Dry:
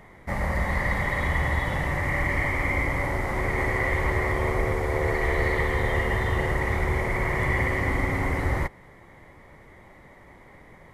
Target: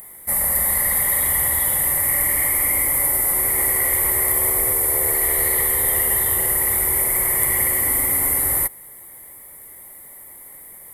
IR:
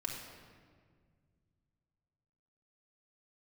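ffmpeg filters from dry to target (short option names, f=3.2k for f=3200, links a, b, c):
-af "bass=f=250:g=-6,treble=f=4k:g=14,aexciter=amount=16:drive=8.1:freq=9k,volume=-2.5dB"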